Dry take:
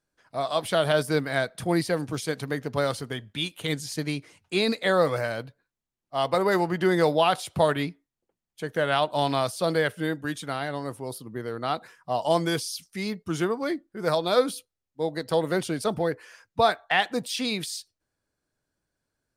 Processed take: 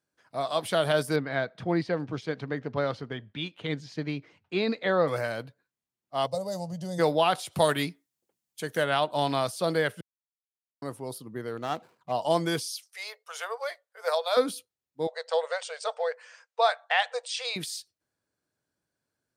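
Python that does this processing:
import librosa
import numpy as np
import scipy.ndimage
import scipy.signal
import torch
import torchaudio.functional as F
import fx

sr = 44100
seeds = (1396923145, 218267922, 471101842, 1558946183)

y = fx.air_absorb(x, sr, metres=200.0, at=(1.16, 5.08))
y = fx.curve_eq(y, sr, hz=(160.0, 370.0, 560.0, 930.0, 1400.0, 1900.0, 3600.0, 6100.0, 12000.0), db=(0, -23, 0, -15, -26, -26, -10, 6, -5), at=(6.26, 6.98), fade=0.02)
y = fx.high_shelf(y, sr, hz=3700.0, db=11.5, at=(7.51, 8.83), fade=0.02)
y = fx.median_filter(y, sr, points=25, at=(11.57, 12.12))
y = fx.steep_highpass(y, sr, hz=470.0, slope=96, at=(12.66, 14.37))
y = fx.brickwall_bandpass(y, sr, low_hz=450.0, high_hz=8900.0, at=(15.07, 17.56))
y = fx.edit(y, sr, fx.silence(start_s=10.01, length_s=0.81), tone=tone)
y = scipy.signal.sosfilt(scipy.signal.butter(2, 93.0, 'highpass', fs=sr, output='sos'), y)
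y = y * 10.0 ** (-2.0 / 20.0)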